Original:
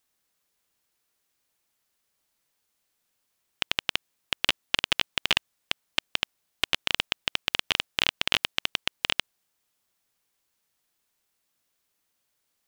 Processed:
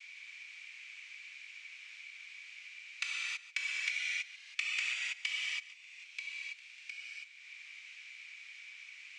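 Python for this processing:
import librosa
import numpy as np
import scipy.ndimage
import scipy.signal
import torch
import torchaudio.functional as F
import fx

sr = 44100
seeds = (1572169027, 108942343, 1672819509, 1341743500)

y = fx.speed_glide(x, sr, from_pct=111, to_pct=165)
y = fx.high_shelf(y, sr, hz=2700.0, db=-7.5)
y = fx.gate_flip(y, sr, shuts_db=-24.0, range_db=-41)
y = fx.noise_vocoder(y, sr, seeds[0], bands=4)
y = fx.ladder_bandpass(y, sr, hz=2400.0, resonance_pct=85)
y = y + 10.0 ** (-18.5 / 20.0) * np.pad(y, (int(141 * sr / 1000.0), 0))[:len(y)]
y = fx.rev_gated(y, sr, seeds[1], gate_ms=350, shape='flat', drr_db=-7.0)
y = fx.band_squash(y, sr, depth_pct=70)
y = y * librosa.db_to_amplitude(9.5)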